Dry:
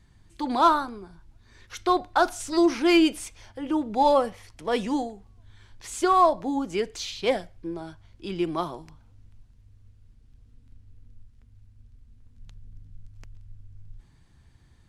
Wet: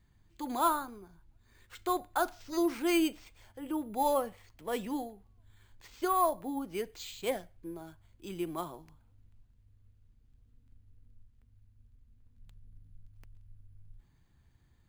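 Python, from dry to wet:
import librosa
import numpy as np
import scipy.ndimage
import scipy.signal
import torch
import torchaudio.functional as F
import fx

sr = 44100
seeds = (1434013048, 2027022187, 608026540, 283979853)

y = np.repeat(scipy.signal.resample_poly(x, 1, 4), 4)[:len(x)]
y = F.gain(torch.from_numpy(y), -9.0).numpy()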